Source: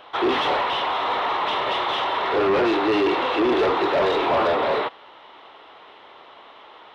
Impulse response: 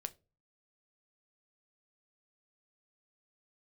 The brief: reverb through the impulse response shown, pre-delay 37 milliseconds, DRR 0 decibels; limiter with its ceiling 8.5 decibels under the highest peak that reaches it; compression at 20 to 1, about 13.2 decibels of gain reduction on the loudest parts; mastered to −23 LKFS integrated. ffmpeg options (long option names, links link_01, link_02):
-filter_complex "[0:a]acompressor=threshold=-30dB:ratio=20,alimiter=level_in=6.5dB:limit=-24dB:level=0:latency=1,volume=-6.5dB,asplit=2[link_01][link_02];[1:a]atrim=start_sample=2205,adelay=37[link_03];[link_02][link_03]afir=irnorm=-1:irlink=0,volume=2.5dB[link_04];[link_01][link_04]amix=inputs=2:normalize=0,volume=11.5dB"